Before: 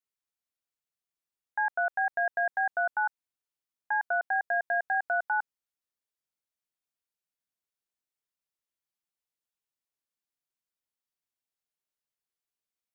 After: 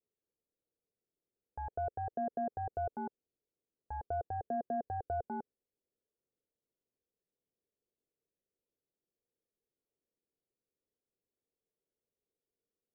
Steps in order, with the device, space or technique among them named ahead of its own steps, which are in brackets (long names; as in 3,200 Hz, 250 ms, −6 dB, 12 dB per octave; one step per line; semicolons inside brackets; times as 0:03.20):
overdriven synthesiser ladder filter (soft clipping −29 dBFS, distortion −12 dB; transistor ladder low-pass 520 Hz, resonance 55%)
level +16 dB